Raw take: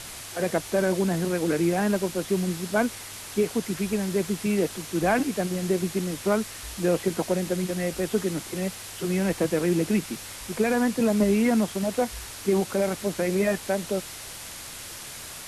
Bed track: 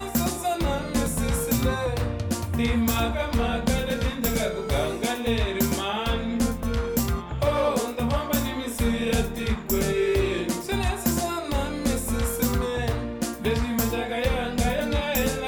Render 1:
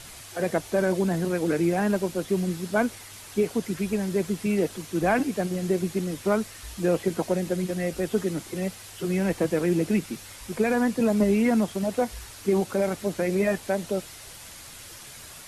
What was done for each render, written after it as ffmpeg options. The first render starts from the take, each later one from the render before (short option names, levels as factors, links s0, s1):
-af "afftdn=nr=6:nf=-40"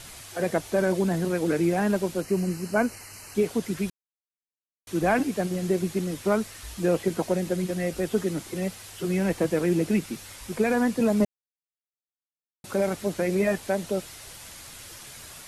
-filter_complex "[0:a]asettb=1/sr,asplit=3[s0][s1][s2];[s0]atrim=end=2.214[s3];[s1]atrim=start=2.21:end=3.35,asetpts=PTS-STARTPTS,afade=t=in:d=0.004:c=qsin,afade=t=out:st=1.136:d=0.004:c=qsin,asuperstop=centerf=3500:order=12:qfactor=3.8[s4];[s2]atrim=start=3.346[s5];[s3][s4]acrossfade=d=0.004:c1=hsin:c2=qsin[s6];[s6][s5]acrossfade=d=0.004:c1=qsin:c2=hsin,asplit=5[s7][s8][s9][s10][s11];[s7]atrim=end=3.9,asetpts=PTS-STARTPTS,afade=t=out:st=3.896:d=0.004:c=hsin[s12];[s8]atrim=start=3.9:end=4.87,asetpts=PTS-STARTPTS,volume=0[s13];[s9]atrim=start=4.87:end=11.25,asetpts=PTS-STARTPTS,afade=t=in:d=0.004:c=hsin,afade=t=out:st=6.376:d=0.004:c=hsin[s14];[s10]atrim=start=11.25:end=12.64,asetpts=PTS-STARTPTS,volume=0[s15];[s11]atrim=start=12.64,asetpts=PTS-STARTPTS,afade=t=in:d=0.004:c=hsin[s16];[s12][s13][s14][s15][s16]concat=n=5:v=0:a=1"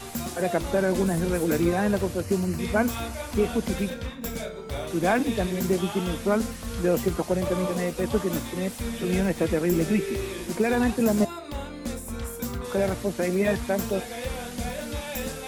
-filter_complex "[1:a]volume=0.398[s0];[0:a][s0]amix=inputs=2:normalize=0"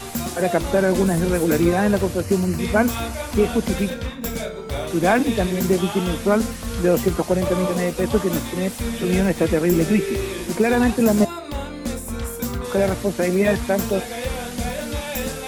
-af "volume=1.88"